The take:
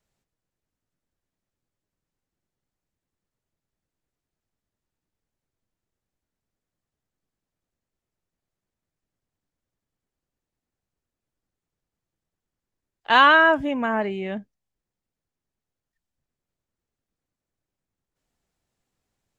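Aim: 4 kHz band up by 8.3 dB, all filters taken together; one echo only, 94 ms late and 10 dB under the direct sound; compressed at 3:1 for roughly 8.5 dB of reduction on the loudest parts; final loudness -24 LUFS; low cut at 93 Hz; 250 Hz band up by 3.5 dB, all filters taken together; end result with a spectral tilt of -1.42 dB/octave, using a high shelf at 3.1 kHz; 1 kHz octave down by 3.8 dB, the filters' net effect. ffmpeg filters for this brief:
-af "highpass=93,equalizer=f=250:t=o:g=4.5,equalizer=f=1000:t=o:g=-6,highshelf=f=3100:g=5.5,equalizer=f=4000:t=o:g=9,acompressor=threshold=0.0794:ratio=3,aecho=1:1:94:0.316"

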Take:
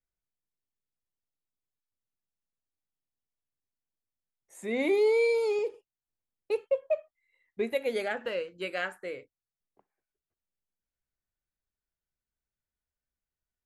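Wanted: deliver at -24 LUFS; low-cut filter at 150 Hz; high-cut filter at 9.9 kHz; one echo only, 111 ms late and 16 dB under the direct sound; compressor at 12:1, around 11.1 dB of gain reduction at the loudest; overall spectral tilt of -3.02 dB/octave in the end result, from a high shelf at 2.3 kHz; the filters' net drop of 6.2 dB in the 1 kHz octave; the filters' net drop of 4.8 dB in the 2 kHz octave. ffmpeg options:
-af "highpass=150,lowpass=9900,equalizer=f=1000:t=o:g=-8.5,equalizer=f=2000:t=o:g=-8,highshelf=f=2300:g=7.5,acompressor=threshold=0.02:ratio=12,aecho=1:1:111:0.158,volume=5.96"

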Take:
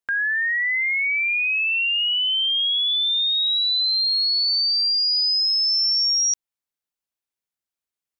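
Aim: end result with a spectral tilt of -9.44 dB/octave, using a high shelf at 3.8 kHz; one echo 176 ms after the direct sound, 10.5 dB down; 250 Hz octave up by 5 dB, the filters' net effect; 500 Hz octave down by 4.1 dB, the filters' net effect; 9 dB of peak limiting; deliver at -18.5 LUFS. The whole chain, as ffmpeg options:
-af "equalizer=f=250:t=o:g=9,equalizer=f=500:t=o:g=-8,highshelf=f=3800:g=-5,alimiter=level_in=1.68:limit=0.0631:level=0:latency=1,volume=0.596,aecho=1:1:176:0.299,volume=3.16"

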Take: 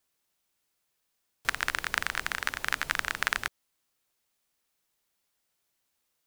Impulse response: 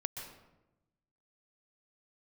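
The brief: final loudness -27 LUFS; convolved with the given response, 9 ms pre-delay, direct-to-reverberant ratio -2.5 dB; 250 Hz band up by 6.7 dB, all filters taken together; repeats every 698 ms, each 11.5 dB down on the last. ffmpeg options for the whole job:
-filter_complex "[0:a]equalizer=f=250:t=o:g=8.5,aecho=1:1:698|1396|2094:0.266|0.0718|0.0194,asplit=2[s0][s1];[1:a]atrim=start_sample=2205,adelay=9[s2];[s1][s2]afir=irnorm=-1:irlink=0,volume=1.26[s3];[s0][s3]amix=inputs=2:normalize=0"

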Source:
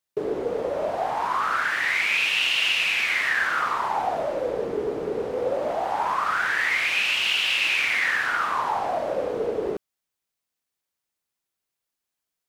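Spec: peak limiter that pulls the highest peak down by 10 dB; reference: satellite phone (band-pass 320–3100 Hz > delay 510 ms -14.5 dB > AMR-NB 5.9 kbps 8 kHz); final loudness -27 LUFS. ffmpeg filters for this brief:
-af "alimiter=limit=0.0891:level=0:latency=1,highpass=320,lowpass=3100,aecho=1:1:510:0.188,volume=1.78" -ar 8000 -c:a libopencore_amrnb -b:a 5900

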